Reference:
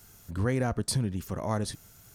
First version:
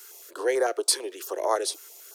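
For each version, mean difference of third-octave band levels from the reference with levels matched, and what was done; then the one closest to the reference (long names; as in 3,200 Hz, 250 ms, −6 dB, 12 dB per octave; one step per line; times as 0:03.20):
10.0 dB: Butterworth high-pass 350 Hz 72 dB per octave
notch on a step sequencer 9 Hz 680–2,600 Hz
level +9 dB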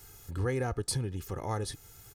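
3.0 dB: comb filter 2.4 ms, depth 59%
in parallel at −1 dB: downward compressor, threshold −42 dBFS, peak gain reduction 18 dB
on the sum: level −5 dB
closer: second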